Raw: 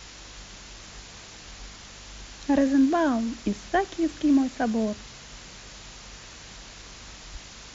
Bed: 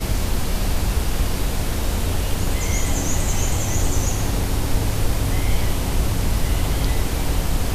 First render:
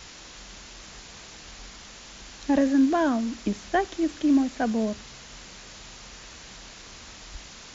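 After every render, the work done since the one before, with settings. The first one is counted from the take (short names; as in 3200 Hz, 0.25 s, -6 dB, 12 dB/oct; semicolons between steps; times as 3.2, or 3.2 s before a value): de-hum 50 Hz, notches 3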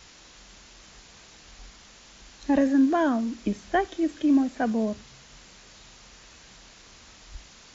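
noise print and reduce 6 dB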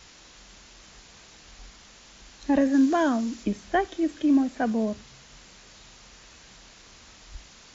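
2.72–3.43 high shelf 3900 Hz -> 5800 Hz +10 dB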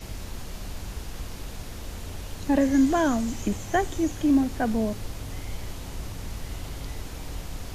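add bed -15 dB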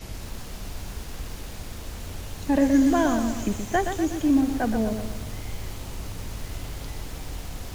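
lo-fi delay 0.122 s, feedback 55%, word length 7-bit, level -7 dB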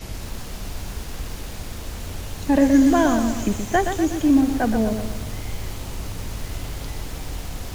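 gain +4 dB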